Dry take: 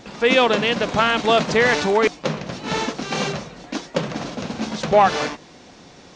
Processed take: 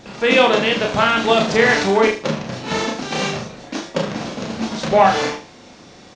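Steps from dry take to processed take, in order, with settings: doubling 31 ms -4.5 dB; on a send: flutter echo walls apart 6.9 m, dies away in 0.34 s

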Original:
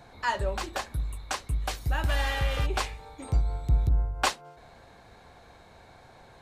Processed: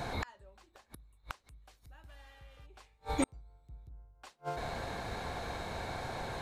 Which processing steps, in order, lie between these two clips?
inverted gate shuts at -32 dBFS, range -41 dB; trim +13 dB

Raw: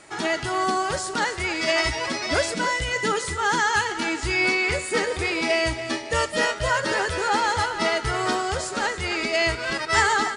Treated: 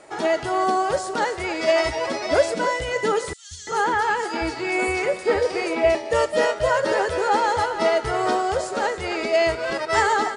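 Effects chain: peaking EQ 570 Hz +12 dB 1.6 oct; 3.33–5.95 s: three bands offset in time highs, lows, mids 180/340 ms, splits 150/3700 Hz; trim -4.5 dB

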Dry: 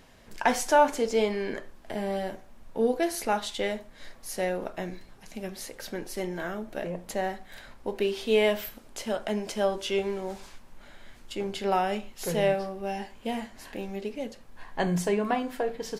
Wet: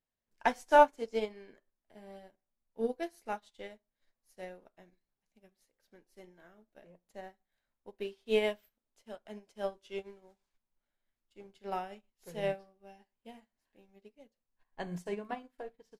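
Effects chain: upward expansion 2.5:1, over -42 dBFS

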